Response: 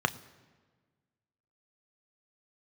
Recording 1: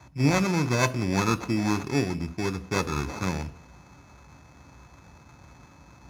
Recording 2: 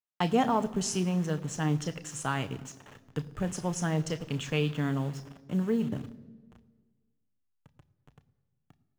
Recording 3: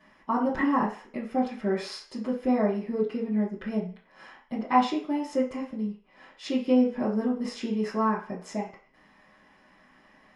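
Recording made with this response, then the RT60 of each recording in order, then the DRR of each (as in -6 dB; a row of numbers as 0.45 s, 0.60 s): 2; no single decay rate, 1.5 s, 0.40 s; 11.5 dB, 10.0 dB, -10.0 dB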